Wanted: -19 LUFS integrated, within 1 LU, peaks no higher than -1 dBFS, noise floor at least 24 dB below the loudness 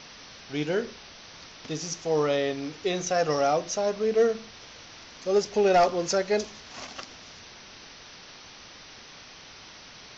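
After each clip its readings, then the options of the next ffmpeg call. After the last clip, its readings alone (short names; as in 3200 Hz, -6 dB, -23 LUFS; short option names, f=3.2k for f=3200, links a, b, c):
noise floor -48 dBFS; noise floor target -51 dBFS; loudness -26.5 LUFS; peak -14.0 dBFS; loudness target -19.0 LUFS
-> -af "afftdn=nr=6:nf=-48"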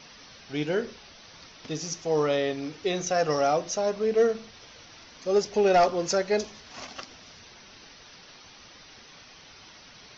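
noise floor -51 dBFS; loudness -26.5 LUFS; peak -14.0 dBFS; loudness target -19.0 LUFS
-> -af "volume=7.5dB"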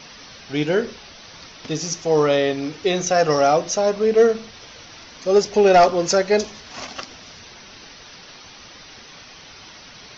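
loudness -19.0 LUFS; peak -6.5 dBFS; noise floor -43 dBFS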